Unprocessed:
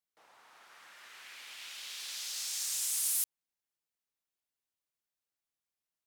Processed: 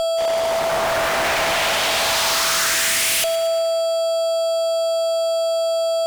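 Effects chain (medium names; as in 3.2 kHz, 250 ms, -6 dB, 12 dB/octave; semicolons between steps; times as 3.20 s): waveshaping leveller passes 5; band-pass sweep 650 Hz -> 4.7 kHz, 1.92–3.73 s; whistle 660 Hz -52 dBFS; fuzz box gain 65 dB, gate -60 dBFS; on a send: two-band feedback delay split 2 kHz, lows 189 ms, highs 116 ms, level -14 dB; on the sum: trim -5 dB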